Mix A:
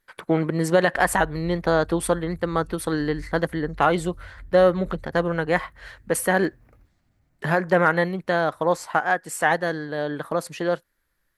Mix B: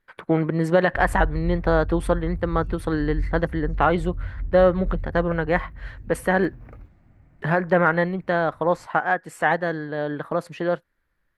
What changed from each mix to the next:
background +11.0 dB; master: add tone controls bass +2 dB, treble -13 dB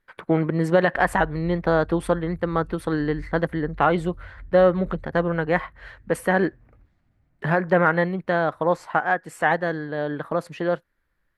background -12.0 dB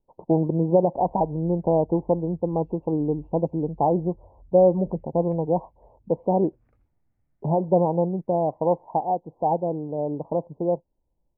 speech: add steep low-pass 950 Hz 96 dB/octave; background -10.5 dB

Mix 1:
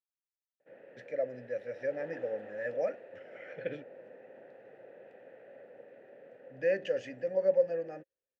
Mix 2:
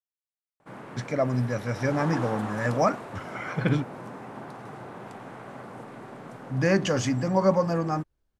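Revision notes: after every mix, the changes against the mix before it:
background: add treble shelf 3.2 kHz +8.5 dB; master: remove vowel filter e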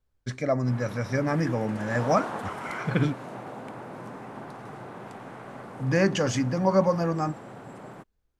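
speech: entry -0.70 s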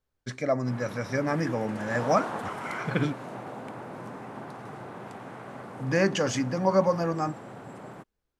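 speech: add bass shelf 120 Hz -10 dB

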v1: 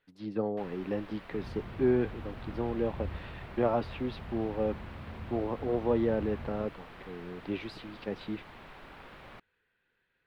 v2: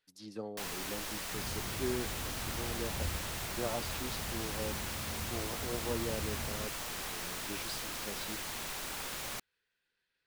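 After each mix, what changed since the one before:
speech -11.0 dB; first sound +3.5 dB; master: remove distance through air 490 m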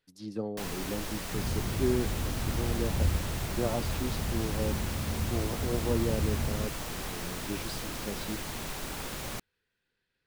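master: add bass shelf 500 Hz +11 dB

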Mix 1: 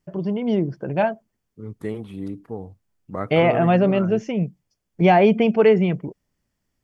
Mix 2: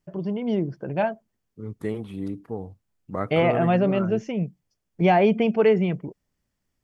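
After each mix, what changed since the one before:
first voice -3.5 dB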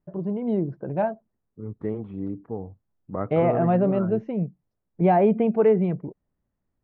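first voice: remove Butterworth band-stop 3.9 kHz, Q 5.6; master: add low-pass 1.2 kHz 12 dB/octave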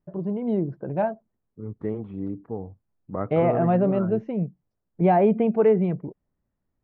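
no change

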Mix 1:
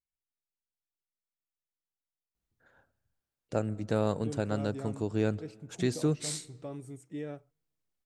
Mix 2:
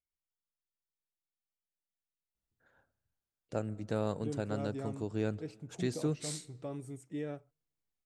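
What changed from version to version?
first voice -5.0 dB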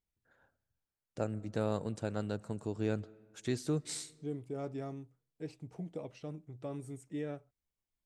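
first voice: entry -2.35 s

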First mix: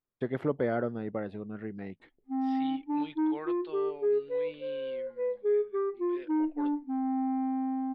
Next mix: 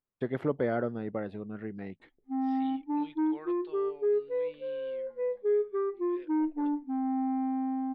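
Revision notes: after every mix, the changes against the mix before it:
second voice -6.0 dB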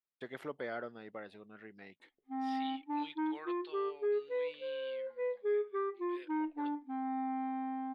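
first voice -7.0 dB; master: add tilt EQ +4.5 dB/octave

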